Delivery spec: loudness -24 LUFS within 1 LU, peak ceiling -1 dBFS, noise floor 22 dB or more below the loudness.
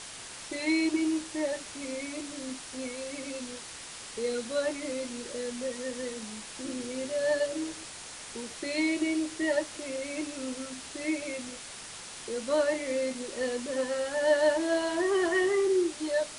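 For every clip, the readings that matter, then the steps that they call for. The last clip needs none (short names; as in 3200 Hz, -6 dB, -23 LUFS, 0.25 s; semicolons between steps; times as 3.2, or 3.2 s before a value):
noise floor -44 dBFS; noise floor target -54 dBFS; loudness -31.5 LUFS; peak -14.0 dBFS; loudness target -24.0 LUFS
-> noise print and reduce 10 dB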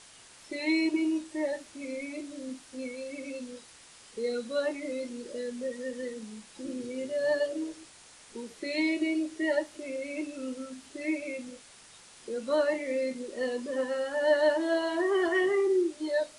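noise floor -54 dBFS; loudness -31.0 LUFS; peak -14.5 dBFS; loudness target -24.0 LUFS
-> gain +7 dB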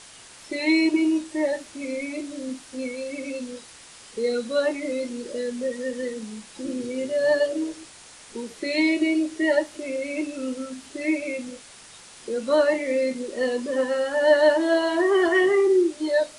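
loudness -24.0 LUFS; peak -7.5 dBFS; noise floor -47 dBFS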